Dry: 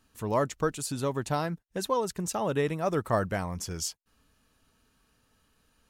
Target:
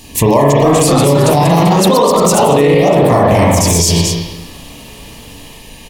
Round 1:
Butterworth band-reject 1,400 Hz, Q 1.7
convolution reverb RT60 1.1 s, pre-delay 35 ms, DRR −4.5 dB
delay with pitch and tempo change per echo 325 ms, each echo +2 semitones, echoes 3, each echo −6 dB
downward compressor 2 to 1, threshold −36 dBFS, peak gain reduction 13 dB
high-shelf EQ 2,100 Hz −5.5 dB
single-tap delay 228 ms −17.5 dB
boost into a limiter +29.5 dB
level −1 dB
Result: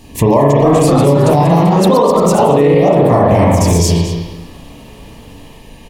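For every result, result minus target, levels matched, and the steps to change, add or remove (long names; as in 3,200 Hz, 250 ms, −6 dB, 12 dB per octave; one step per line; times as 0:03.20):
4,000 Hz band −6.5 dB; downward compressor: peak gain reduction +5 dB
change: high-shelf EQ 2,100 Hz +5.5 dB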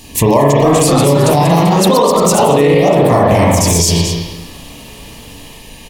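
downward compressor: peak gain reduction +5 dB
change: downward compressor 2 to 1, threshold −26.5 dBFS, peak gain reduction 8 dB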